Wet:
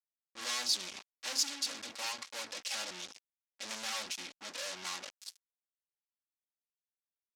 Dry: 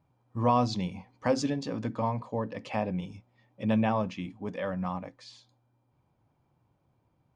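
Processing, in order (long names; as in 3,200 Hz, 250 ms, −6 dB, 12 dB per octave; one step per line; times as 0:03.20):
lower of the sound and its delayed copy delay 3.6 ms
fuzz pedal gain 43 dB, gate −46 dBFS
resonant band-pass 5,800 Hz, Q 1.3
level −8.5 dB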